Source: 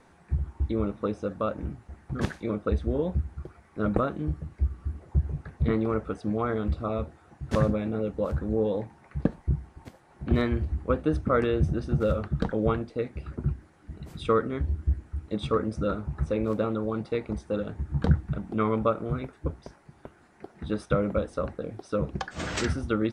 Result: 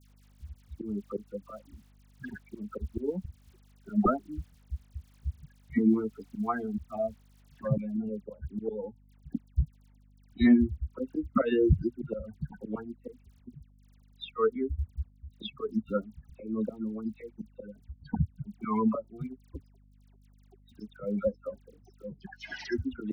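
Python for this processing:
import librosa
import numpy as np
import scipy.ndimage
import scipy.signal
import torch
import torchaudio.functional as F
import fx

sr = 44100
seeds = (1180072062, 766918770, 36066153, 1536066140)

y = fx.bin_expand(x, sr, power=3.0)
y = scipy.signal.sosfilt(scipy.signal.butter(16, 5800.0, 'lowpass', fs=sr, output='sos'), y)
y = fx.peak_eq(y, sr, hz=250.0, db=10.0, octaves=0.82)
y = fx.auto_swell(y, sr, attack_ms=185.0)
y = fx.dmg_crackle(y, sr, seeds[0], per_s=fx.steps((0.0, 140.0), (7.65, 22.0)), level_db=-58.0)
y = fx.dispersion(y, sr, late='lows', ms=96.0, hz=1700.0)
y = fx.add_hum(y, sr, base_hz=50, snr_db=27)
y = y * librosa.db_to_amplitude(8.5)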